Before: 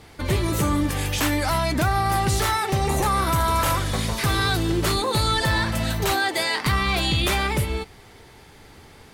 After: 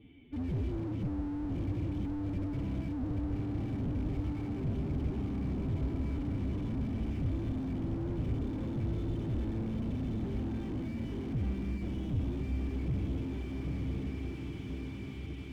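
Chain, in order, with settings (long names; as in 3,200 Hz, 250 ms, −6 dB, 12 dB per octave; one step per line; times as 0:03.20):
formant resonators in series i
phase-vocoder stretch with locked phases 1.7×
on a send: feedback delay with all-pass diffusion 938 ms, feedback 59%, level −3 dB
on the sum: slew-rate limiting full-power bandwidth 3.7 Hz
level +2.5 dB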